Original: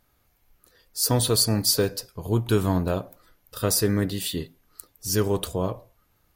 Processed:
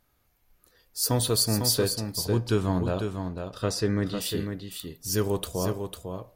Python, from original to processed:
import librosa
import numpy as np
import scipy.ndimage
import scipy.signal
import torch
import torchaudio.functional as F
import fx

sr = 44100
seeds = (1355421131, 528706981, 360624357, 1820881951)

y = fx.lowpass(x, sr, hz=fx.line((1.74, 9300.0), (4.2, 4900.0)), slope=12, at=(1.74, 4.2), fade=0.02)
y = y + 10.0 ** (-6.5 / 20.0) * np.pad(y, (int(500 * sr / 1000.0), 0))[:len(y)]
y = F.gain(torch.from_numpy(y), -3.0).numpy()